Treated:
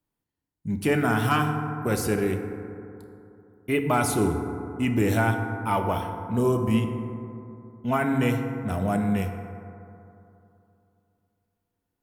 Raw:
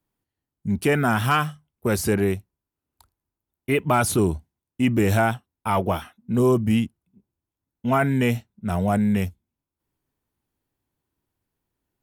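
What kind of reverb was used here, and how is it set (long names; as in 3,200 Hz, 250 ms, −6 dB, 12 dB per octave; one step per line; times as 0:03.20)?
feedback delay network reverb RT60 2.9 s, high-frequency decay 0.3×, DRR 4.5 dB
level −4 dB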